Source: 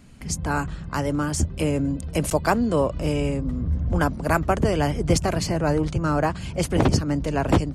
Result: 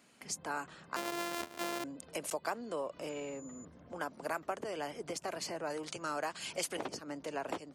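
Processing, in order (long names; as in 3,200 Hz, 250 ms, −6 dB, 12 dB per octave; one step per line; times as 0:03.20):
0:00.96–0:01.84: samples sorted by size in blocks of 128 samples
0:05.70–0:06.77: high-shelf EQ 2,100 Hz +10.5 dB
downward compressor 5 to 1, threshold −25 dBFS, peak gain reduction 11.5 dB
high-pass filter 420 Hz 12 dB per octave
0:03.09–0:03.65: switching amplifier with a slow clock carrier 7,000 Hz
level −6.5 dB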